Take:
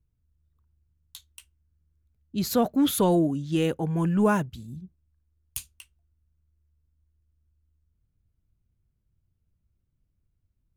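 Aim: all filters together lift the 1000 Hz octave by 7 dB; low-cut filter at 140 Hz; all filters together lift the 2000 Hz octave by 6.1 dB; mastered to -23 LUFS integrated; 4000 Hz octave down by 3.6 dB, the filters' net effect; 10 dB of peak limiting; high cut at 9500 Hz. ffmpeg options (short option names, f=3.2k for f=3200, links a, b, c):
-af "highpass=140,lowpass=9.5k,equalizer=f=1k:t=o:g=7.5,equalizer=f=2k:t=o:g=7,equalizer=f=4k:t=o:g=-8,volume=4.5dB,alimiter=limit=-12.5dB:level=0:latency=1"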